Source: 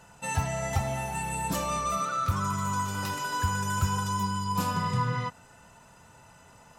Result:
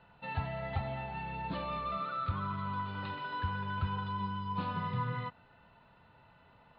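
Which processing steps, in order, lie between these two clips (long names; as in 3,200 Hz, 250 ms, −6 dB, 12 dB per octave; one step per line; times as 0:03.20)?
Butterworth low-pass 4,300 Hz 96 dB per octave
level −7 dB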